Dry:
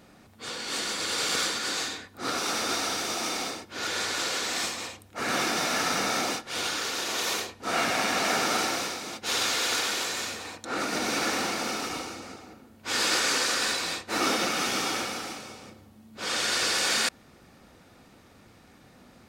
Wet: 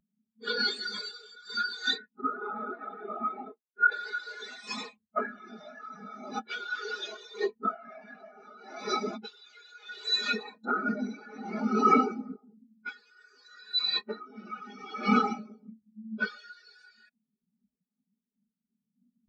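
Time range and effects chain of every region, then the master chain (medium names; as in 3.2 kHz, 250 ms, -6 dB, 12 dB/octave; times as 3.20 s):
2.21–3.92 s: low-pass 2.6 kHz + expander -31 dBFS + compression 12:1, threshold -35 dBFS
whole clip: comb 4.8 ms, depth 57%; compressor with a negative ratio -33 dBFS, ratio -1; spectral contrast expander 4:1; trim +7 dB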